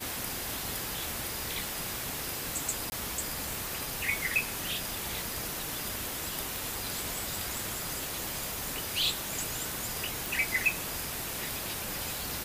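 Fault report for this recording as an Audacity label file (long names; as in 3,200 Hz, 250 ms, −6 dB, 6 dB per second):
2.900000	2.920000	drop-out 20 ms
6.560000	6.560000	click
10.260000	10.260000	click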